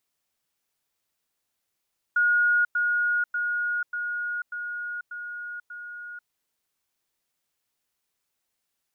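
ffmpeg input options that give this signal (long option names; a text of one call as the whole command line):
ffmpeg -f lavfi -i "aevalsrc='pow(10,(-18-3*floor(t/0.59))/20)*sin(2*PI*1440*t)*clip(min(mod(t,0.59),0.49-mod(t,0.59))/0.005,0,1)':duration=4.13:sample_rate=44100" out.wav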